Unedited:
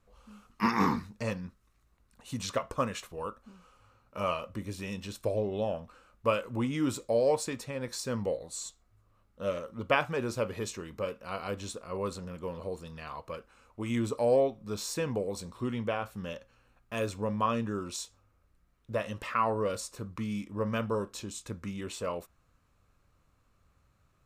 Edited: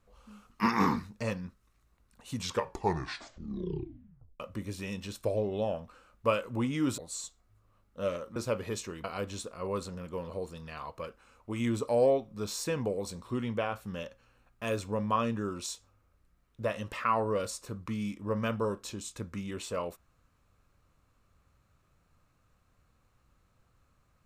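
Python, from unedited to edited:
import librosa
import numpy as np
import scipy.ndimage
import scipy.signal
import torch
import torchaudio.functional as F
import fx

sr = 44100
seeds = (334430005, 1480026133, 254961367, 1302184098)

y = fx.edit(x, sr, fx.tape_stop(start_s=2.35, length_s=2.05),
    fx.cut(start_s=6.98, length_s=1.42),
    fx.cut(start_s=9.78, length_s=0.48),
    fx.cut(start_s=10.94, length_s=0.4), tone=tone)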